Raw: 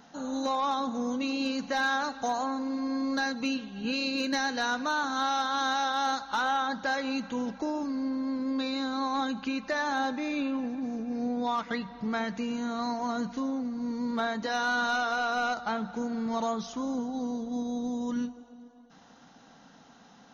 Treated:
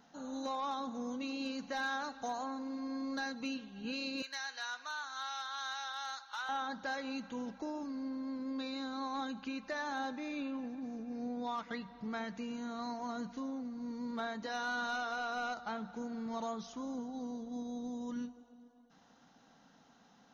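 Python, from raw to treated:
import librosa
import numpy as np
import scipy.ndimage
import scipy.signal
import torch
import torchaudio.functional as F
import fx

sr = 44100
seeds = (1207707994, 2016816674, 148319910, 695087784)

y = fx.highpass(x, sr, hz=1200.0, slope=12, at=(4.22, 6.49))
y = F.gain(torch.from_numpy(y), -9.0).numpy()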